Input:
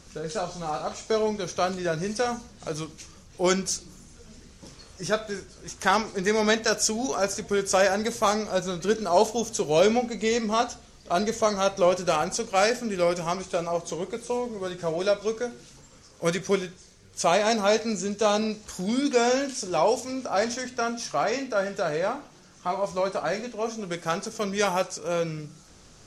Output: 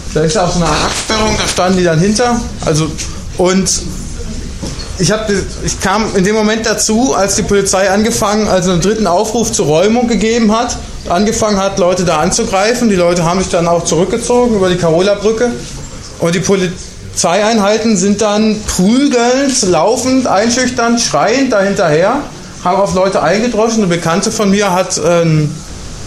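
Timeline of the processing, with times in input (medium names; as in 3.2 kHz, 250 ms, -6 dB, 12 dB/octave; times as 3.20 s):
0.65–1.57 s: spectral peaks clipped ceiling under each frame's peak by 22 dB
whole clip: bass shelf 150 Hz +7.5 dB; compression, threshold -25 dBFS; loudness maximiser +24 dB; trim -1 dB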